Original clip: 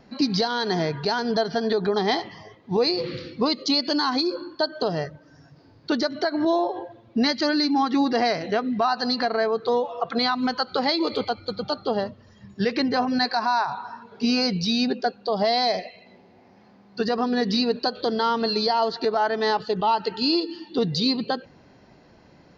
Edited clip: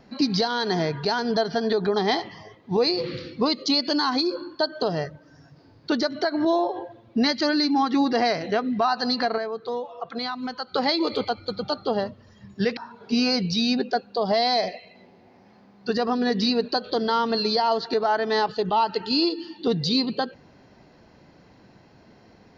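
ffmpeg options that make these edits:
-filter_complex "[0:a]asplit=4[s0][s1][s2][s3];[s0]atrim=end=9.382[s4];[s1]atrim=start=9.378:end=10.742,asetpts=PTS-STARTPTS,volume=0.447[s5];[s2]atrim=start=10.738:end=12.772[s6];[s3]atrim=start=13.878[s7];[s4][s5]acrossfade=d=0.004:c1=hsin:c2=hsin[s8];[s8][s6]acrossfade=d=0.004:c1=hsin:c2=hsin[s9];[s9][s7]acrossfade=d=0.004:c1=hsin:c2=hsin"

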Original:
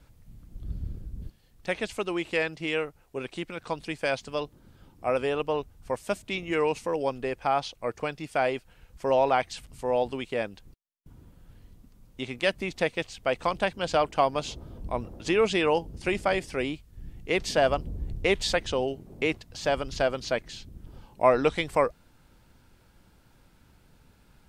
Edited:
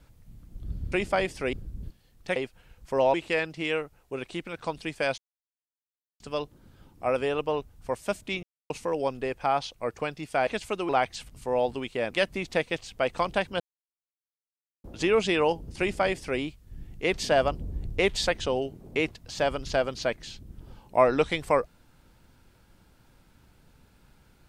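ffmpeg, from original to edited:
-filter_complex "[0:a]asplit=13[s0][s1][s2][s3][s4][s5][s6][s7][s8][s9][s10][s11][s12];[s0]atrim=end=0.922[s13];[s1]atrim=start=16.048:end=16.662[s14];[s2]atrim=start=0.918:end=1.752[s15];[s3]atrim=start=8.478:end=9.262[s16];[s4]atrim=start=2.168:end=4.21,asetpts=PTS-STARTPTS,afade=t=out:st=2.038:d=0.004:c=hsin,apad=pad_dur=1.02[s17];[s5]atrim=start=4.21:end=6.44,asetpts=PTS-STARTPTS,afade=t=in:d=0.004:c=hsin,afade=t=out:st=2.226:d=0.004:c=hsin[s18];[s6]atrim=start=6.44:end=6.71,asetpts=PTS-STARTPTS,volume=0[s19];[s7]atrim=start=6.71:end=8.482,asetpts=PTS-STARTPTS,afade=t=in:d=0.004:c=hsin[s20];[s8]atrim=start=1.748:end=2.172[s21];[s9]atrim=start=9.258:end=10.482[s22];[s10]atrim=start=12.368:end=13.86,asetpts=PTS-STARTPTS,afade=t=out:st=1.488:d=0.004:c=hsin[s23];[s11]atrim=start=13.86:end=15.1,asetpts=PTS-STARTPTS,volume=0[s24];[s12]atrim=start=15.1,asetpts=PTS-STARTPTS,afade=t=in:d=0.004:c=hsin[s25];[s13][s14]acrossfade=d=0.004:c1=hsin:c2=hsin[s26];[s26][s15]acrossfade=d=0.004:c1=hsin:c2=hsin[s27];[s27][s16]acrossfade=d=0.004:c1=hsin:c2=hsin[s28];[s17][s18][s19][s20]concat=n=4:v=0:a=1[s29];[s28][s29]acrossfade=d=0.004:c1=hsin:c2=hsin[s30];[s30][s21]acrossfade=d=0.004:c1=hsin:c2=hsin[s31];[s31][s22]acrossfade=d=0.004:c1=hsin:c2=hsin[s32];[s23][s24][s25]concat=n=3:v=0:a=1[s33];[s32][s33]acrossfade=d=0.004:c1=hsin:c2=hsin"

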